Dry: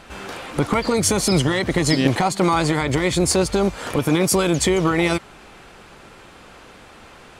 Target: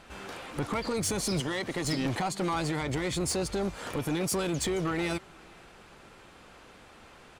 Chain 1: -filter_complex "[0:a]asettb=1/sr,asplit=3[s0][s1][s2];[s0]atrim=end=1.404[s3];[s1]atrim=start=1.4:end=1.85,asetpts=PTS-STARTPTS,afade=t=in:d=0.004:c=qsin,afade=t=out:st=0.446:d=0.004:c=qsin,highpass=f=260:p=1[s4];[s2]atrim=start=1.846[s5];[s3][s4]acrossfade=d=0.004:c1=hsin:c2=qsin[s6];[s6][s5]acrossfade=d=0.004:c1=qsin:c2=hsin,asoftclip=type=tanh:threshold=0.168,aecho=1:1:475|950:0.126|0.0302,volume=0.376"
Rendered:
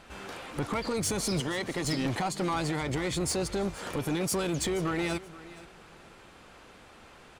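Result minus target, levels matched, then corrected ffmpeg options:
echo-to-direct +10.5 dB
-filter_complex "[0:a]asettb=1/sr,asplit=3[s0][s1][s2];[s0]atrim=end=1.404[s3];[s1]atrim=start=1.4:end=1.85,asetpts=PTS-STARTPTS,afade=t=in:d=0.004:c=qsin,afade=t=out:st=0.446:d=0.004:c=qsin,highpass=f=260:p=1[s4];[s2]atrim=start=1.846[s5];[s3][s4]acrossfade=d=0.004:c1=hsin:c2=qsin[s6];[s6][s5]acrossfade=d=0.004:c1=qsin:c2=hsin,asoftclip=type=tanh:threshold=0.168,aecho=1:1:475:0.0376,volume=0.376"

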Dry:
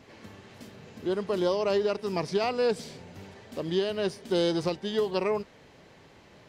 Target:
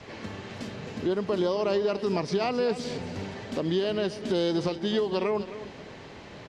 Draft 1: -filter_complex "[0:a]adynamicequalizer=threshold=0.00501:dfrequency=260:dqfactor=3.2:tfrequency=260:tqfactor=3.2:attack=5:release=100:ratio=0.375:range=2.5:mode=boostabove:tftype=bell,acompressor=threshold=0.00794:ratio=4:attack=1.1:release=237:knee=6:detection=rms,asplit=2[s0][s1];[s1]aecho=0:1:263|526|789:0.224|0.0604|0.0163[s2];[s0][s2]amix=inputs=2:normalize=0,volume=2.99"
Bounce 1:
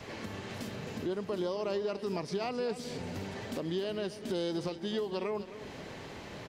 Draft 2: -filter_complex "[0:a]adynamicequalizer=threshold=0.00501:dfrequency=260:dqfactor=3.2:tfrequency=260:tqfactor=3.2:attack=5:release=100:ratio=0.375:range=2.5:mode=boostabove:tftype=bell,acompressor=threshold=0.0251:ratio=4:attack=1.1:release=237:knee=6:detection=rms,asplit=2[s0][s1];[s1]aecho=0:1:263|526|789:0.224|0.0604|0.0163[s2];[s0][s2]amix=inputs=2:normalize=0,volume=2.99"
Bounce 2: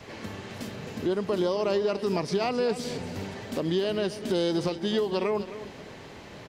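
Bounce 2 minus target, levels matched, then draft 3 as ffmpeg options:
8 kHz band +3.0 dB
-filter_complex "[0:a]adynamicequalizer=threshold=0.00501:dfrequency=260:dqfactor=3.2:tfrequency=260:tqfactor=3.2:attack=5:release=100:ratio=0.375:range=2.5:mode=boostabove:tftype=bell,lowpass=6600,acompressor=threshold=0.0251:ratio=4:attack=1.1:release=237:knee=6:detection=rms,asplit=2[s0][s1];[s1]aecho=0:1:263|526|789:0.224|0.0604|0.0163[s2];[s0][s2]amix=inputs=2:normalize=0,volume=2.99"

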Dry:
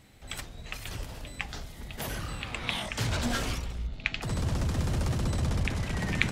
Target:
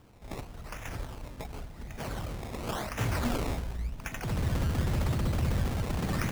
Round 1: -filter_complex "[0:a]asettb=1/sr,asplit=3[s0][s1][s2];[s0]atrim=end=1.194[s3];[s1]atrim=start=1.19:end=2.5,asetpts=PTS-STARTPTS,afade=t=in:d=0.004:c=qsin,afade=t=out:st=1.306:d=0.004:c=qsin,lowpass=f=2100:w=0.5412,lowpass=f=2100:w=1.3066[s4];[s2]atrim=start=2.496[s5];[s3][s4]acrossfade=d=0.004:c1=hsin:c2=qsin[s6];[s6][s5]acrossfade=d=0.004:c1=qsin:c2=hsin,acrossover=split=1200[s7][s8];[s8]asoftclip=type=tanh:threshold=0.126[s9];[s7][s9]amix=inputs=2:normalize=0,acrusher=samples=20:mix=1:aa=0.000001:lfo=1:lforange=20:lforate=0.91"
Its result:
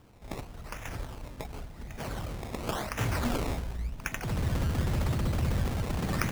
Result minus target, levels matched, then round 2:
saturation: distortion -5 dB
-filter_complex "[0:a]asettb=1/sr,asplit=3[s0][s1][s2];[s0]atrim=end=1.194[s3];[s1]atrim=start=1.19:end=2.5,asetpts=PTS-STARTPTS,afade=t=in:d=0.004:c=qsin,afade=t=out:st=1.306:d=0.004:c=qsin,lowpass=f=2100:w=0.5412,lowpass=f=2100:w=1.3066[s4];[s2]atrim=start=2.496[s5];[s3][s4]acrossfade=d=0.004:c1=hsin:c2=qsin[s6];[s6][s5]acrossfade=d=0.004:c1=qsin:c2=hsin,acrossover=split=1200[s7][s8];[s8]asoftclip=type=tanh:threshold=0.0355[s9];[s7][s9]amix=inputs=2:normalize=0,acrusher=samples=20:mix=1:aa=0.000001:lfo=1:lforange=20:lforate=0.91"

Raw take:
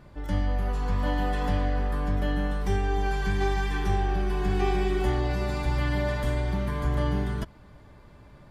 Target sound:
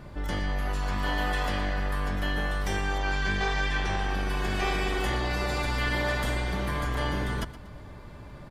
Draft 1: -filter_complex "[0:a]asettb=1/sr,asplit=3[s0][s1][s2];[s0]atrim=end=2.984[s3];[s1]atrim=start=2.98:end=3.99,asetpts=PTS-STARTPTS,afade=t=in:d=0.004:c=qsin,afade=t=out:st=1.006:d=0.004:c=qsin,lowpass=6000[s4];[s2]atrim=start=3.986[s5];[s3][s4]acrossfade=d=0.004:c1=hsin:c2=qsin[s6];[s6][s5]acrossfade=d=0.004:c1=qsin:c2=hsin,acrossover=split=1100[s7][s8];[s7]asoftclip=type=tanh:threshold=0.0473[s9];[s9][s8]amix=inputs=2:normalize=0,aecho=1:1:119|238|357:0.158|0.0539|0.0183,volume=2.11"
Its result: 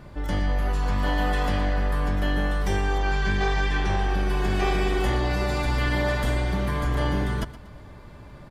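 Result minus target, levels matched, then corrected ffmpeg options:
saturation: distortion -5 dB
-filter_complex "[0:a]asettb=1/sr,asplit=3[s0][s1][s2];[s0]atrim=end=2.984[s3];[s1]atrim=start=2.98:end=3.99,asetpts=PTS-STARTPTS,afade=t=in:d=0.004:c=qsin,afade=t=out:st=1.006:d=0.004:c=qsin,lowpass=6000[s4];[s2]atrim=start=3.986[s5];[s3][s4]acrossfade=d=0.004:c1=hsin:c2=qsin[s6];[s6][s5]acrossfade=d=0.004:c1=qsin:c2=hsin,acrossover=split=1100[s7][s8];[s7]asoftclip=type=tanh:threshold=0.02[s9];[s9][s8]amix=inputs=2:normalize=0,aecho=1:1:119|238|357:0.158|0.0539|0.0183,volume=2.11"

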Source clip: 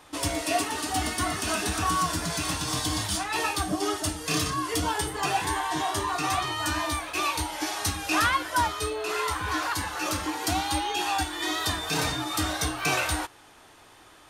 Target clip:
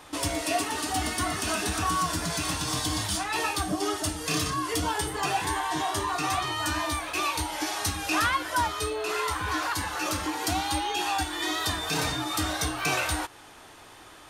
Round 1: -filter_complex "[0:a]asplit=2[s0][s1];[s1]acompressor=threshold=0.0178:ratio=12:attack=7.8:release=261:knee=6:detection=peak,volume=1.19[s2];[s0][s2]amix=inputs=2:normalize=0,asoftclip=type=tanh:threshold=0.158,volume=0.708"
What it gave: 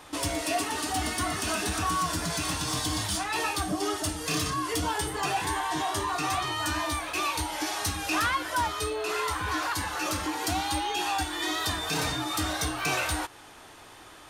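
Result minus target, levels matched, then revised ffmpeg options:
saturation: distortion +21 dB
-filter_complex "[0:a]asplit=2[s0][s1];[s1]acompressor=threshold=0.0178:ratio=12:attack=7.8:release=261:knee=6:detection=peak,volume=1.19[s2];[s0][s2]amix=inputs=2:normalize=0,asoftclip=type=tanh:threshold=0.631,volume=0.708"

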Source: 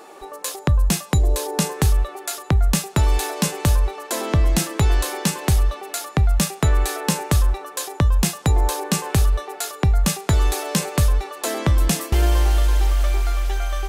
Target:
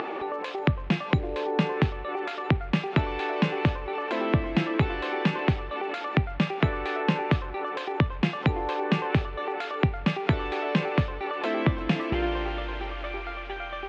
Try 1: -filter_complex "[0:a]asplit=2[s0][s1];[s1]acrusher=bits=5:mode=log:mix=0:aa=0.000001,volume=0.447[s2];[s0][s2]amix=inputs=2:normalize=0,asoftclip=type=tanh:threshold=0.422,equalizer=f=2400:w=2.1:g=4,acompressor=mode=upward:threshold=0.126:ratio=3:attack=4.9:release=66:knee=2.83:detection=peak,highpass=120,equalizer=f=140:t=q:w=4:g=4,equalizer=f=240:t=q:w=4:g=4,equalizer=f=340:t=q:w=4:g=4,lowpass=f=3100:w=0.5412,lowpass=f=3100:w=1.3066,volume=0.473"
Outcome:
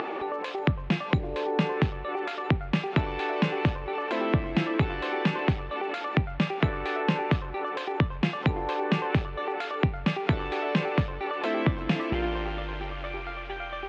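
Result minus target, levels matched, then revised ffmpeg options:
saturation: distortion +11 dB
-filter_complex "[0:a]asplit=2[s0][s1];[s1]acrusher=bits=5:mode=log:mix=0:aa=0.000001,volume=0.447[s2];[s0][s2]amix=inputs=2:normalize=0,asoftclip=type=tanh:threshold=0.891,equalizer=f=2400:w=2.1:g=4,acompressor=mode=upward:threshold=0.126:ratio=3:attack=4.9:release=66:knee=2.83:detection=peak,highpass=120,equalizer=f=140:t=q:w=4:g=4,equalizer=f=240:t=q:w=4:g=4,equalizer=f=340:t=q:w=4:g=4,lowpass=f=3100:w=0.5412,lowpass=f=3100:w=1.3066,volume=0.473"

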